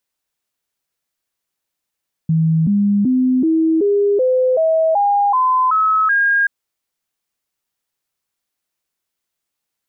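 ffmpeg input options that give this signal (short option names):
-f lavfi -i "aevalsrc='0.266*clip(min(mod(t,0.38),0.38-mod(t,0.38))/0.005,0,1)*sin(2*PI*161*pow(2,floor(t/0.38)/3)*mod(t,0.38))':d=4.18:s=44100"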